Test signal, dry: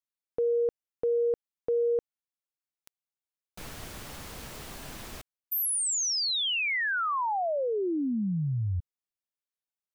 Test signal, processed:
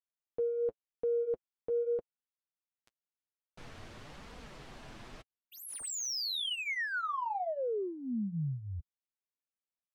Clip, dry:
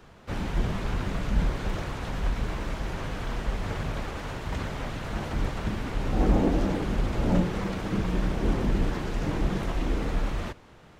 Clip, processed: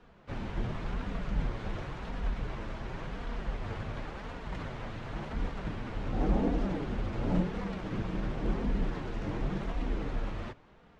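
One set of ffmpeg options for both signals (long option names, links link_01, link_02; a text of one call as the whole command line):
ffmpeg -i in.wav -af "adynamicsmooth=sensitivity=5.5:basefreq=4500,flanger=delay=4.1:depth=5.2:regen=-27:speed=0.92:shape=sinusoidal,volume=-2.5dB" out.wav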